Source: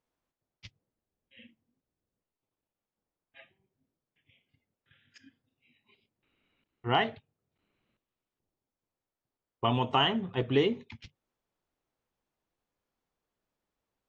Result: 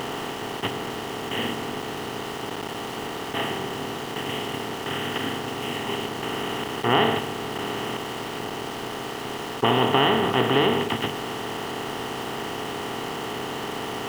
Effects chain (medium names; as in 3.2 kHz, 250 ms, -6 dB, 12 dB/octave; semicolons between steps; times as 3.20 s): spectral levelling over time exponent 0.2; small samples zeroed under -33.5 dBFS